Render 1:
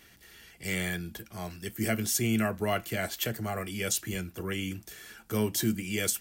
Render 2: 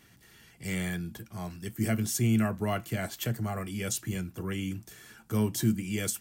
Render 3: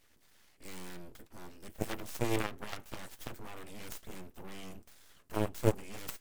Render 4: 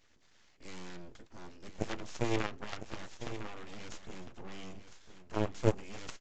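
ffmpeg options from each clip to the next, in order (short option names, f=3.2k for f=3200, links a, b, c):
-af "equalizer=f=125:t=o:w=1:g=11,equalizer=f=250:t=o:w=1:g=5,equalizer=f=1k:t=o:w=1:g=5,equalizer=f=8k:t=o:w=1:g=3,volume=-5.5dB"
-af "aeval=exprs='0.188*(cos(1*acos(clip(val(0)/0.188,-1,1)))-cos(1*PI/2))+0.0668*(cos(3*acos(clip(val(0)/0.188,-1,1)))-cos(3*PI/2))+0.0119*(cos(6*acos(clip(val(0)/0.188,-1,1)))-cos(6*PI/2))+0.00668*(cos(7*acos(clip(val(0)/0.188,-1,1)))-cos(7*PI/2))+0.0106*(cos(8*acos(clip(val(0)/0.188,-1,1)))-cos(8*PI/2))':c=same,aeval=exprs='abs(val(0))':c=same,volume=3.5dB"
-filter_complex "[0:a]asplit=2[a][b];[b]aecho=0:1:1004:0.266[c];[a][c]amix=inputs=2:normalize=0,aresample=16000,aresample=44100"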